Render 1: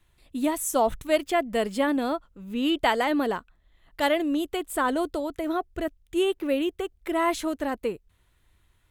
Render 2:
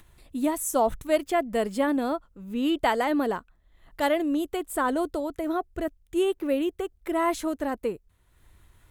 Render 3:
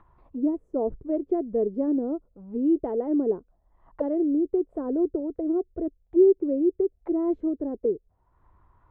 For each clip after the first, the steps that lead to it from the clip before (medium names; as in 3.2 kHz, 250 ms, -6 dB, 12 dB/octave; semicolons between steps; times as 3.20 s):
upward compressor, threshold -45 dBFS; peaking EQ 3.1 kHz -5 dB 1.5 oct
touch-sensitive low-pass 400–1100 Hz down, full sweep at -26.5 dBFS; trim -4 dB